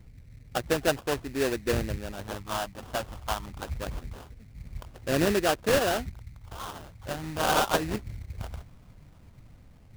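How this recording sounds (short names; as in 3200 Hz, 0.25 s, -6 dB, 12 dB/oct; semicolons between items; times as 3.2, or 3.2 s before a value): phasing stages 6, 0.25 Hz, lowest notch 410–2700 Hz; aliases and images of a low sample rate 2200 Hz, jitter 20%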